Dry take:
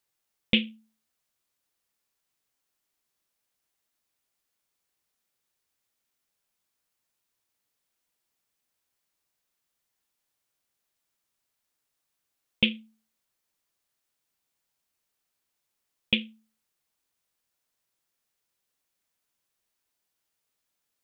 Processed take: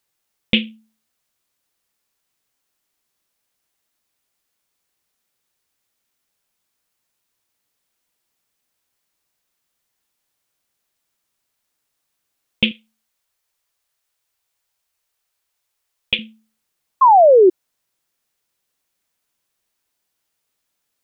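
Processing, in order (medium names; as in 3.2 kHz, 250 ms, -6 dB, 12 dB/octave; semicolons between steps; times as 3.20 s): 12.71–16.19 s: peaking EQ 220 Hz -14.5 dB 1.1 oct; 17.01–17.50 s: painted sound fall 350–1100 Hz -15 dBFS; trim +6 dB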